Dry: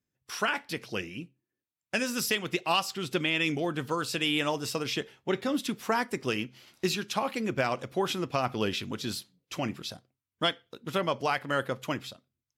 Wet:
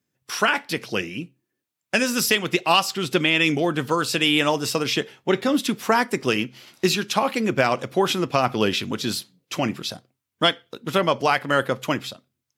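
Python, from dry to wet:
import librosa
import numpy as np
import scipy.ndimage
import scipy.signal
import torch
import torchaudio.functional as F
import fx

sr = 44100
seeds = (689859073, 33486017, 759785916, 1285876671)

y = scipy.signal.sosfilt(scipy.signal.butter(2, 110.0, 'highpass', fs=sr, output='sos'), x)
y = y * 10.0 ** (8.5 / 20.0)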